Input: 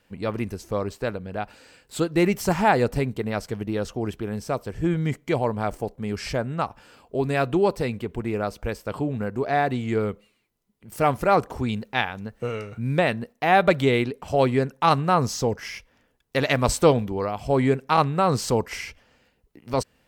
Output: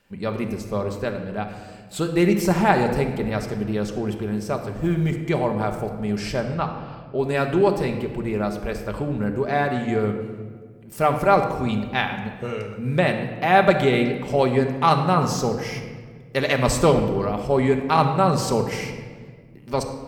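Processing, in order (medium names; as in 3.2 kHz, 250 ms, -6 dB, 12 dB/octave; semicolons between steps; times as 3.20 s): 4.71–5.15 s: companding laws mixed up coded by A; 6.54–7.19 s: steep low-pass 4.7 kHz; simulated room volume 2000 m³, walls mixed, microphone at 1.2 m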